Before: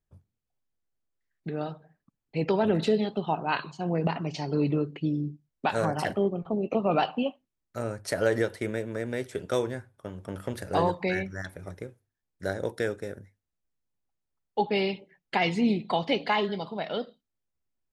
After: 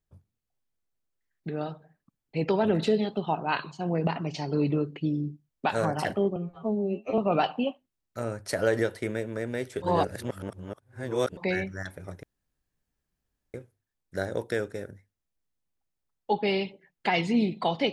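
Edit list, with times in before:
6.36–6.77 s: stretch 2×
9.41–10.96 s: reverse
11.82 s: insert room tone 1.31 s

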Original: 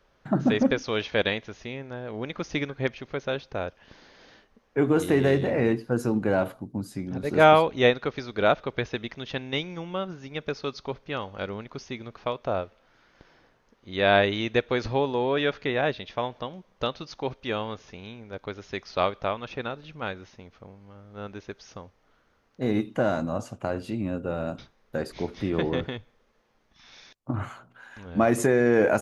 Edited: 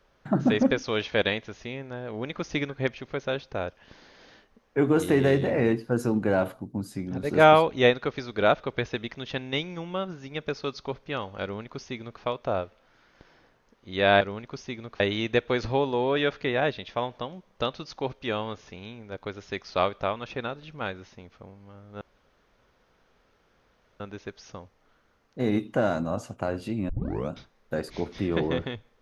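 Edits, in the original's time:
11.43–12.22 s: copy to 14.21 s
21.22 s: insert room tone 1.99 s
24.11 s: tape start 0.42 s

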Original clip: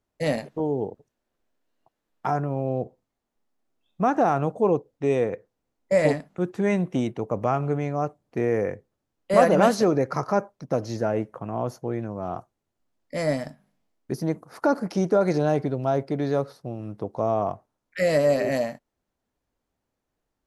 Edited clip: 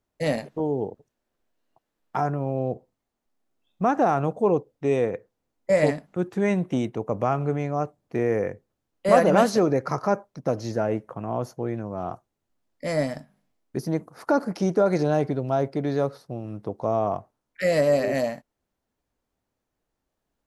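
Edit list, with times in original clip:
shrink pauses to 90%

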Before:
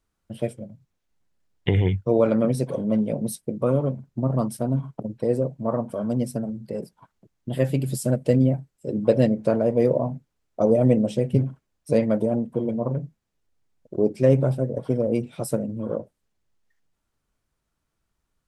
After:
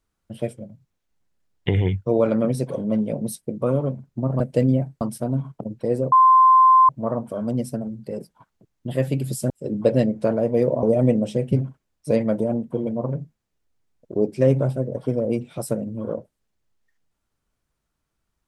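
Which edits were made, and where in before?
5.51 s: add tone 1.04 kHz -9.5 dBFS 0.77 s
8.12–8.73 s: move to 4.40 s
10.06–10.65 s: delete

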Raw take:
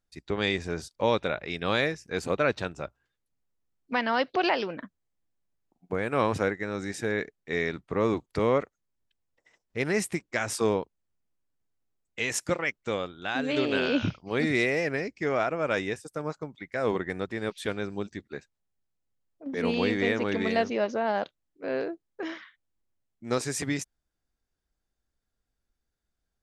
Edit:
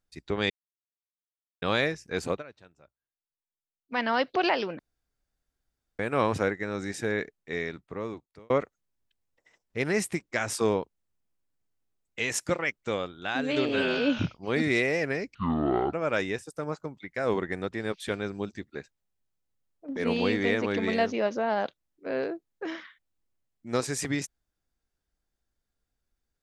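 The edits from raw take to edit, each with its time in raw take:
0.50–1.62 s: mute
2.30–4.00 s: dip -22.5 dB, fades 0.13 s
4.79–5.99 s: room tone
7.13–8.50 s: fade out
13.69–14.02 s: stretch 1.5×
15.18–15.51 s: speed 56%

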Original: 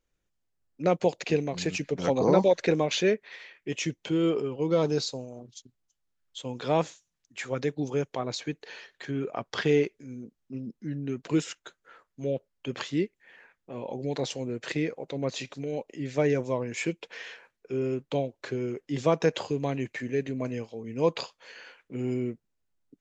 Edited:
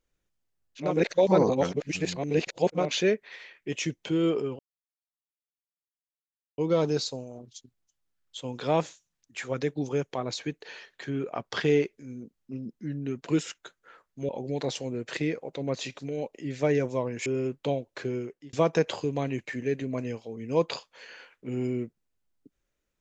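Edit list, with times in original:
0.87–2.84 s: reverse, crossfade 0.24 s
4.59 s: insert silence 1.99 s
12.30–13.84 s: delete
16.81–17.73 s: delete
18.61–19.00 s: fade out

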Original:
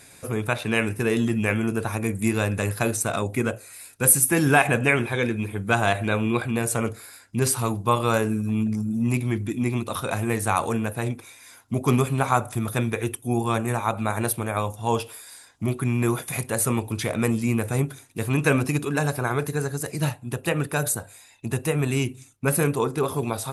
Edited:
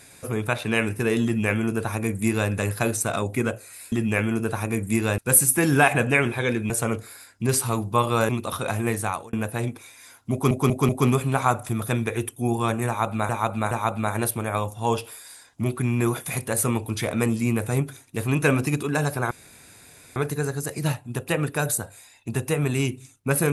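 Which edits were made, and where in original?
1.24–2.50 s: copy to 3.92 s
5.44–6.63 s: delete
8.22–9.72 s: delete
10.37–10.76 s: fade out
11.75 s: stutter 0.19 s, 4 plays
13.73–14.15 s: loop, 3 plays
19.33 s: insert room tone 0.85 s

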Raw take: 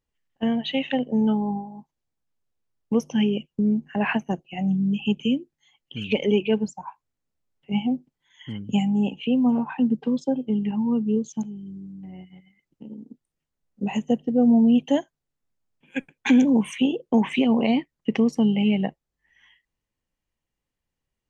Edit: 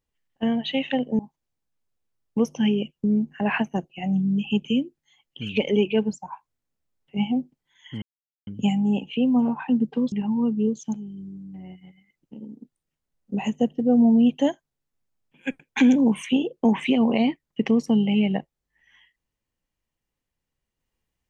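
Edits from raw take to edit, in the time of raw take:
1.19–1.74 s: delete
8.57 s: insert silence 0.45 s
10.22–10.61 s: delete

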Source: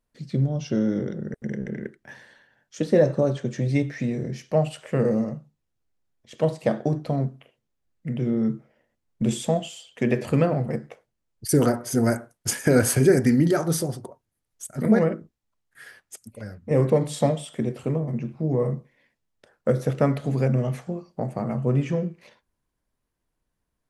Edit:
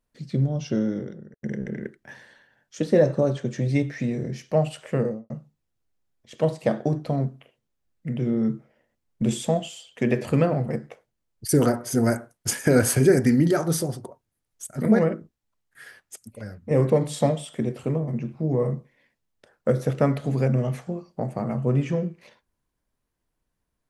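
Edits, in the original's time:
0.72–1.43 s: fade out
4.90–5.30 s: studio fade out

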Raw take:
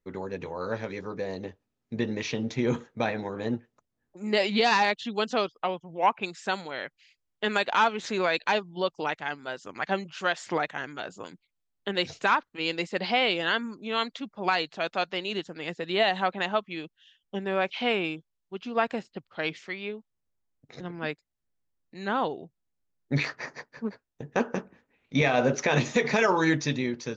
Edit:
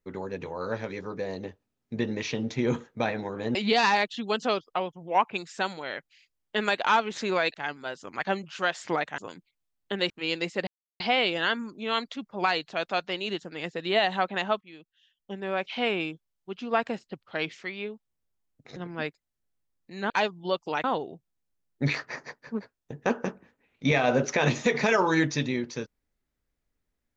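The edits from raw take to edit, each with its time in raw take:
3.55–4.43 s: delete
8.42–9.16 s: move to 22.14 s
10.80–11.14 s: delete
12.06–12.47 s: delete
13.04 s: insert silence 0.33 s
16.65–18.08 s: fade in, from -14.5 dB

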